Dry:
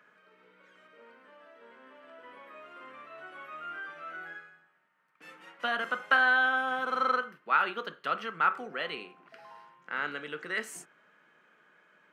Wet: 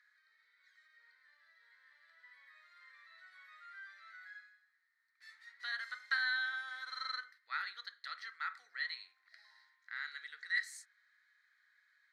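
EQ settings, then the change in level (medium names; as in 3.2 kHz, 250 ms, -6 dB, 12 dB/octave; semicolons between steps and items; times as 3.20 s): two resonant band-passes 2.8 kHz, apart 1.1 oct; differentiator; +12.0 dB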